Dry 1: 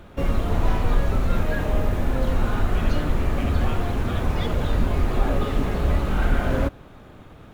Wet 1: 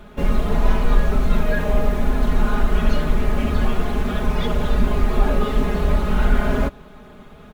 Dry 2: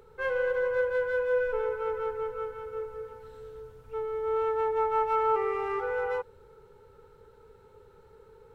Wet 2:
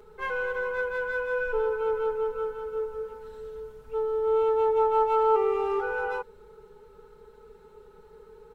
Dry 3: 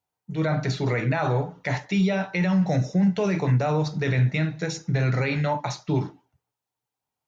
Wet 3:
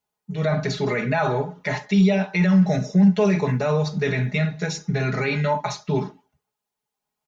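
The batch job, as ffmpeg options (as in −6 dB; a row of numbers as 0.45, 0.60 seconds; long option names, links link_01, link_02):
-af "aecho=1:1:4.8:0.93"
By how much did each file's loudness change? +2.5, +2.5, +3.0 LU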